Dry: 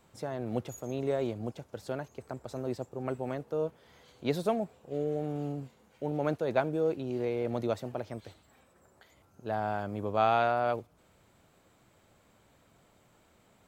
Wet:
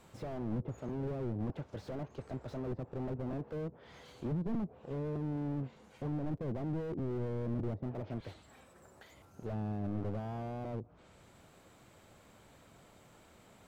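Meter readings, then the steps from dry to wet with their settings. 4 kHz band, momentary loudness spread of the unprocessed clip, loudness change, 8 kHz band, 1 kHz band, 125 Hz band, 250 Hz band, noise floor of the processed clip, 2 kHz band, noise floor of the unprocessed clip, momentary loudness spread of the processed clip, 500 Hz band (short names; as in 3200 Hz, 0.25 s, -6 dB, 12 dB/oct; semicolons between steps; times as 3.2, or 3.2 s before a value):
-12.0 dB, 12 LU, -6.0 dB, n/a, -15.0 dB, +1.5 dB, -2.0 dB, -61 dBFS, -14.0 dB, -65 dBFS, 10 LU, -10.0 dB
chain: treble ducked by the level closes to 360 Hz, closed at -28.5 dBFS; crackling interface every 0.61 s, samples 256, repeat, from 0.88; slew limiter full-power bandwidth 3.5 Hz; gain +4 dB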